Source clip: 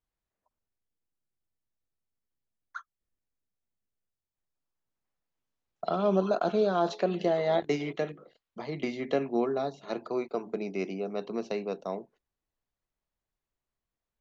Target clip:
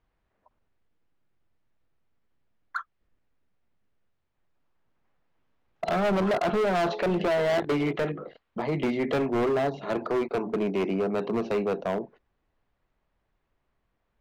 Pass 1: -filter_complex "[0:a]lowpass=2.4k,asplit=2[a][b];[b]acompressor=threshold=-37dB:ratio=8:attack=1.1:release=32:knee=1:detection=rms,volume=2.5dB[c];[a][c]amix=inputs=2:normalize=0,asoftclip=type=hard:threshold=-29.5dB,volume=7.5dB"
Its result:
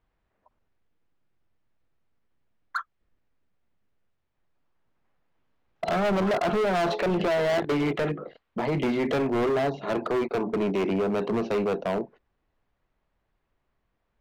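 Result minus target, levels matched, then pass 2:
compressor: peak gain reduction -10 dB
-filter_complex "[0:a]lowpass=2.4k,asplit=2[a][b];[b]acompressor=threshold=-48.5dB:ratio=8:attack=1.1:release=32:knee=1:detection=rms,volume=2.5dB[c];[a][c]amix=inputs=2:normalize=0,asoftclip=type=hard:threshold=-29.5dB,volume=7.5dB"

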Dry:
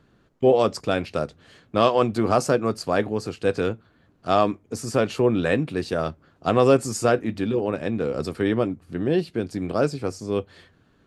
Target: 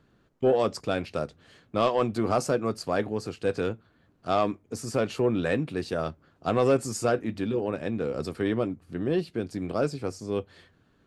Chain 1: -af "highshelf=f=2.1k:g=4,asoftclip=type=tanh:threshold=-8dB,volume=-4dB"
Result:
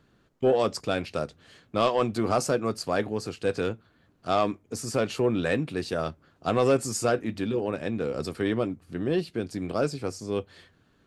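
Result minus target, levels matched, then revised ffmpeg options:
4000 Hz band +2.5 dB
-af "asoftclip=type=tanh:threshold=-8dB,volume=-4dB"

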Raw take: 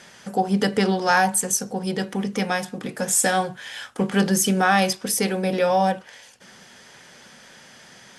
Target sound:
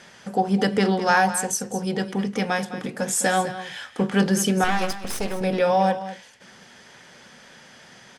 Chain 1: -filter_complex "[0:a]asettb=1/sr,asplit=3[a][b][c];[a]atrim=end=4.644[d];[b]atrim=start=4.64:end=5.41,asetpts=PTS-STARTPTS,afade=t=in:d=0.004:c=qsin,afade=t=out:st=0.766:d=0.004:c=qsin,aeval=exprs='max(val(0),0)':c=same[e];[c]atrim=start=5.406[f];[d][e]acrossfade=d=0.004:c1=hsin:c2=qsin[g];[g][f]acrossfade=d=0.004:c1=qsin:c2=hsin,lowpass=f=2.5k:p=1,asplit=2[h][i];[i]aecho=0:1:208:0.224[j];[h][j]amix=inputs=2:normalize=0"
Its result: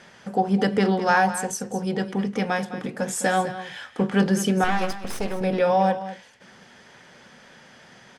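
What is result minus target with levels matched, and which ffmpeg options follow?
8000 Hz band -5.0 dB
-filter_complex "[0:a]asettb=1/sr,asplit=3[a][b][c];[a]atrim=end=4.644[d];[b]atrim=start=4.64:end=5.41,asetpts=PTS-STARTPTS,afade=t=in:d=0.004:c=qsin,afade=t=out:st=0.766:d=0.004:c=qsin,aeval=exprs='max(val(0),0)':c=same[e];[c]atrim=start=5.406[f];[d][e]acrossfade=d=0.004:c1=hsin:c2=qsin[g];[g][f]acrossfade=d=0.004:c1=qsin:c2=hsin,lowpass=f=5.7k:p=1,asplit=2[h][i];[i]aecho=0:1:208:0.224[j];[h][j]amix=inputs=2:normalize=0"

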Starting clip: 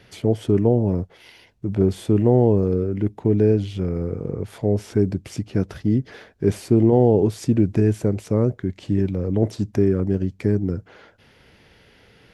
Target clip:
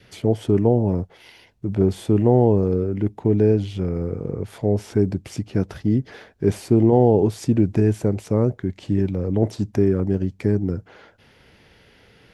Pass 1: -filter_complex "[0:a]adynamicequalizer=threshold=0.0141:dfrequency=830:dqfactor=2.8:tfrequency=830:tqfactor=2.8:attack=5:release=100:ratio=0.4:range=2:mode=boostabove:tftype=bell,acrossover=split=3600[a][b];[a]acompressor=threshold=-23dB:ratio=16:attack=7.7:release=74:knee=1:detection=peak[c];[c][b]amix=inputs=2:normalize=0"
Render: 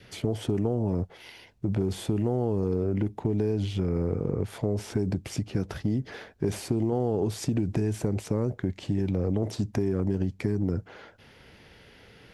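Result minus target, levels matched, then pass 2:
compressor: peak gain reduction +13 dB
-af "adynamicequalizer=threshold=0.0141:dfrequency=830:dqfactor=2.8:tfrequency=830:tqfactor=2.8:attack=5:release=100:ratio=0.4:range=2:mode=boostabove:tftype=bell"

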